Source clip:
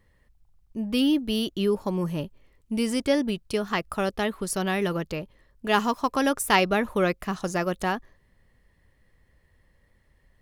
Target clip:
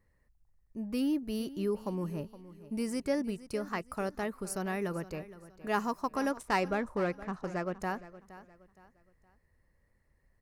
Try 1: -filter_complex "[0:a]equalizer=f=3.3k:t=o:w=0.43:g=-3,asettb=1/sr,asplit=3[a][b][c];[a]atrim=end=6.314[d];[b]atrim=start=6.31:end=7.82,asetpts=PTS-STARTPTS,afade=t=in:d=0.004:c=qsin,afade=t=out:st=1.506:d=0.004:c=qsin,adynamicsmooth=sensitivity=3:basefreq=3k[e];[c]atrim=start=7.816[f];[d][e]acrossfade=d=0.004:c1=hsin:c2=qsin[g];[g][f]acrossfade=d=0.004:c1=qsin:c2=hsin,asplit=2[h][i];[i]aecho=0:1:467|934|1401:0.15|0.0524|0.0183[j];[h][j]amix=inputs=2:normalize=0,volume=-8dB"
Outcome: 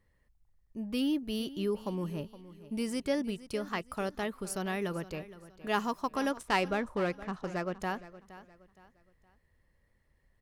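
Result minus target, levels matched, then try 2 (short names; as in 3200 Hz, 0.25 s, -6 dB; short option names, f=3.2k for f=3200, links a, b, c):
4000 Hz band +5.5 dB
-filter_complex "[0:a]equalizer=f=3.3k:t=o:w=0.43:g=-15,asettb=1/sr,asplit=3[a][b][c];[a]atrim=end=6.314[d];[b]atrim=start=6.31:end=7.82,asetpts=PTS-STARTPTS,afade=t=in:d=0.004:c=qsin,afade=t=out:st=1.506:d=0.004:c=qsin,adynamicsmooth=sensitivity=3:basefreq=3k[e];[c]atrim=start=7.816[f];[d][e]acrossfade=d=0.004:c1=hsin:c2=qsin[g];[g][f]acrossfade=d=0.004:c1=qsin:c2=hsin,asplit=2[h][i];[i]aecho=0:1:467|934|1401:0.15|0.0524|0.0183[j];[h][j]amix=inputs=2:normalize=0,volume=-8dB"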